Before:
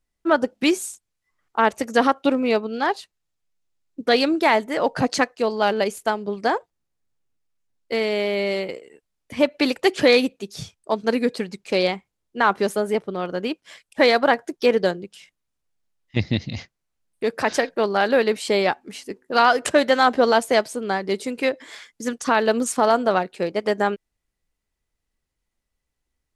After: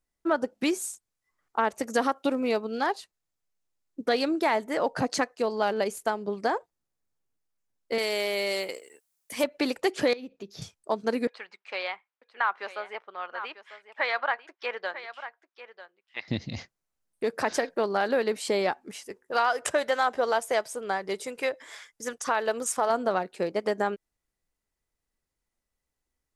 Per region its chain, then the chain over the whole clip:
1.9–2.92 high shelf 5600 Hz +6.5 dB + short-mantissa float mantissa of 8-bit
7.98–9.44 RIAA curve recording + companded quantiser 8-bit
10.13–10.62 running mean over 5 samples + bell 1100 Hz -3.5 dB 1.8 oct + compressor 8:1, threshold -30 dBFS
11.27–16.28 Butterworth band-pass 1700 Hz, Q 0.75 + echo 0.945 s -14.5 dB
18.91–22.9 bell 250 Hz -11 dB 1.1 oct + notch 4300 Hz, Q 11
whole clip: bell 3000 Hz -4.5 dB 1.3 oct; compressor 2:1, threshold -22 dBFS; low shelf 220 Hz -5.5 dB; gain -1.5 dB

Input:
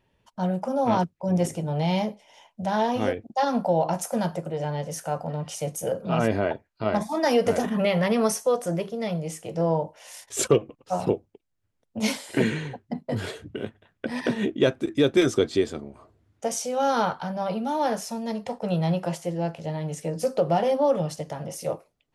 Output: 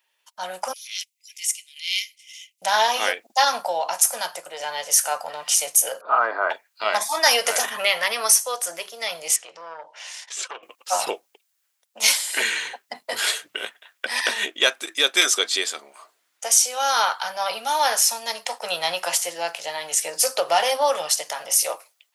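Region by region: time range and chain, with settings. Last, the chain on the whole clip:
0.73–2.62 rippled Chebyshev high-pass 2000 Hz, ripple 3 dB + transient shaper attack -12 dB, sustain -7 dB
6.01–6.5 Chebyshev band-pass 240–4500 Hz, order 5 + resonant high shelf 1900 Hz -13.5 dB, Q 3
9.36–10.63 compressor 2:1, threshold -45 dBFS + air absorption 130 m + core saturation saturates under 630 Hz
whole clip: HPF 860 Hz 12 dB/oct; tilt +3.5 dB/oct; AGC gain up to 11.5 dB; gain -1 dB

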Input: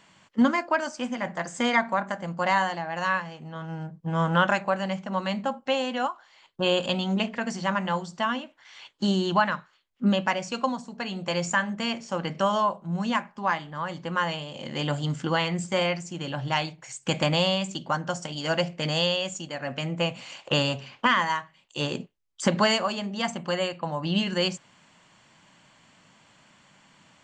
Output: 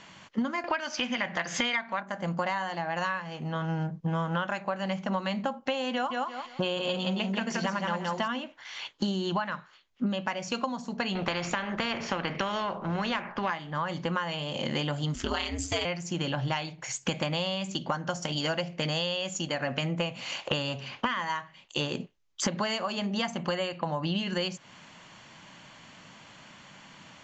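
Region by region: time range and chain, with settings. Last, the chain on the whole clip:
0.64–2.01 LPF 6600 Hz 24 dB/oct + bell 2800 Hz +12 dB 1.9 oct + upward compressor, threshold -24 dBFS
5.93–8.28 block floating point 7-bit + feedback echo 0.172 s, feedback 21%, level -3.5 dB
11.15–13.5 block floating point 7-bit + LPF 2200 Hz + spectral compressor 2:1
15.14–15.85 high shelf 3100 Hz +12 dB + ring modulator 99 Hz
whole clip: elliptic low-pass 6800 Hz, stop band 50 dB; compressor 12:1, threshold -34 dBFS; gain +7.5 dB

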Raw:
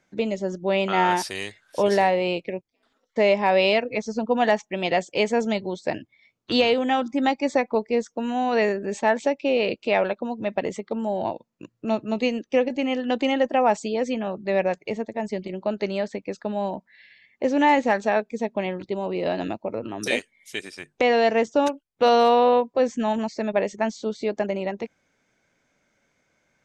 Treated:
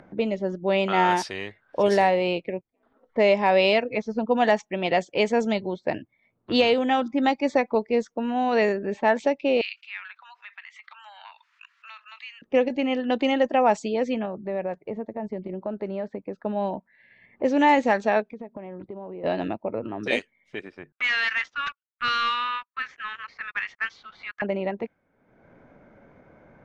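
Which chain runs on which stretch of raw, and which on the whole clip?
9.61–12.42 Bessel high-pass 2600 Hz, order 8 + fast leveller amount 50%
14.25–16.42 dynamic EQ 2700 Hz, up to -6 dB, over -45 dBFS, Q 0.75 + compressor 2:1, threshold -28 dBFS
18.22–19.24 Gaussian blur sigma 1.6 samples + compressor 5:1, threshold -34 dBFS
20.92–24.42 steep high-pass 1200 Hz 72 dB/oct + sample leveller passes 3 + air absorption 120 m
whole clip: low-pass opened by the level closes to 980 Hz, open at -15.5 dBFS; high shelf 7300 Hz -4 dB; upward compressor, threshold -36 dBFS

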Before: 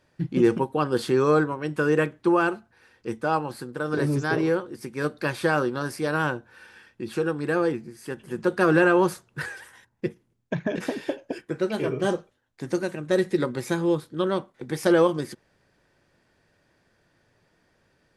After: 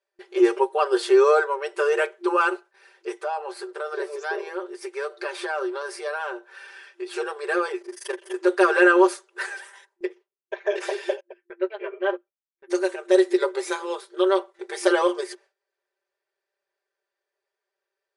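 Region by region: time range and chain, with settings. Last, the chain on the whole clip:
3.16–7.06 high shelf 5100 Hz -5 dB + compressor 3:1, threshold -28 dBFS + mismatched tape noise reduction encoder only
7.81–8.34 ripple EQ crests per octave 1.2, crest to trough 6 dB + AM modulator 24 Hz, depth 90% + sample leveller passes 2
10.05–10.66 LPF 4400 Hz + compressor 1.5:1, threshold -34 dBFS
11.2–12.7 speaker cabinet 110–2700 Hz, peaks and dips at 120 Hz +7 dB, 410 Hz -7 dB, 770 Hz -5 dB, 1200 Hz -3 dB + upward expander 2.5:1, over -40 dBFS
whole clip: FFT band-pass 350–11000 Hz; gate with hold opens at -51 dBFS; comb 5.1 ms, depth 93%; gain +1 dB

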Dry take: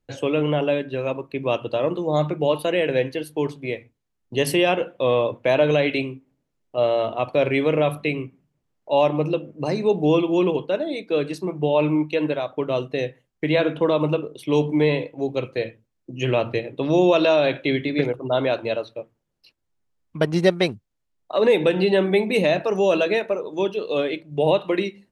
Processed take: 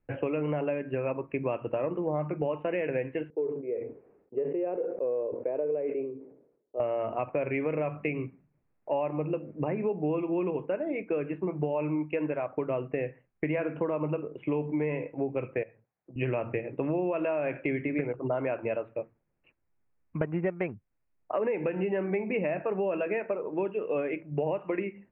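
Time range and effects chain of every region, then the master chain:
3.3–6.8 band-pass 440 Hz, Q 4.4 + sustainer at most 79 dB/s
15.63–16.16 speaker cabinet 140–2400 Hz, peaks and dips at 230 Hz -8 dB, 320 Hz -8 dB, 770 Hz +7 dB + compressor 2:1, threshold -52 dBFS
whole clip: steep low-pass 2600 Hz 72 dB/oct; compressor 6:1, threshold -27 dBFS

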